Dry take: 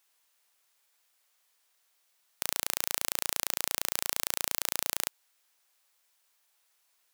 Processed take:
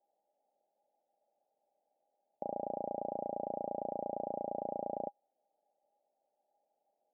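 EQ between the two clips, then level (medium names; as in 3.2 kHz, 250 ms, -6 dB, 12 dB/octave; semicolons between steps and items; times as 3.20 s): high-pass 580 Hz 6 dB/octave; rippled Chebyshev low-pass 840 Hz, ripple 9 dB; +17.0 dB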